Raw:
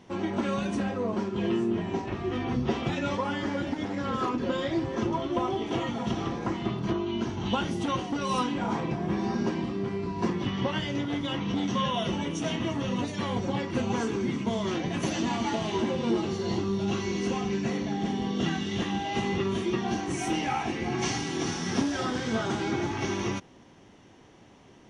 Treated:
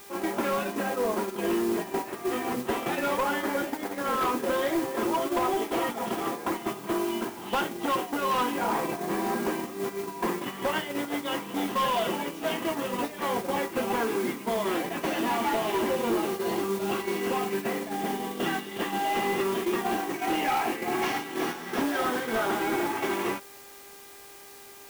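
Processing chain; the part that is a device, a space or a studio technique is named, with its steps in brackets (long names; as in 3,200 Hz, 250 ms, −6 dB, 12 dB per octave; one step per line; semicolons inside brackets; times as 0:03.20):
aircraft radio (band-pass filter 380–2,400 Hz; hard clipping −28 dBFS, distortion −15 dB; hum with harmonics 400 Hz, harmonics 6, −52 dBFS −4 dB per octave; white noise bed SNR 14 dB; noise gate −35 dBFS, range −7 dB)
level +6 dB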